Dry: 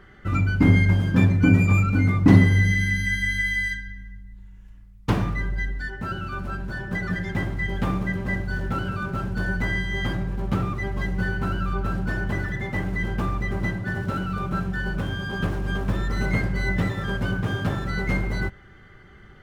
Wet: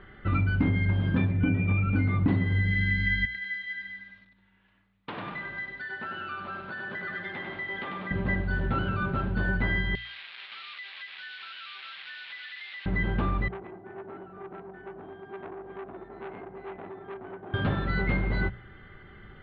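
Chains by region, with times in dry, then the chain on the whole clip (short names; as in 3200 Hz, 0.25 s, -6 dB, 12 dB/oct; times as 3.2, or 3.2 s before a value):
1.31–1.96 Chebyshev low-pass 3600 Hz, order 6 + bell 1100 Hz -5 dB 0.66 oct
3.25–8.11 weighting filter A + compressor 5:1, threshold -34 dBFS + lo-fi delay 97 ms, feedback 55%, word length 9-bit, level -4 dB
9.95–12.86 delta modulation 32 kbps, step -26.5 dBFS + Butterworth band-pass 3300 Hz, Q 0.93 + compressor, threshold -37 dBFS
13.48–17.54 double band-pass 530 Hz, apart 0.88 oct + core saturation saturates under 1100 Hz
whole clip: steep low-pass 4000 Hz 48 dB/oct; notches 60/120/180 Hz; compressor 10:1, threshold -21 dBFS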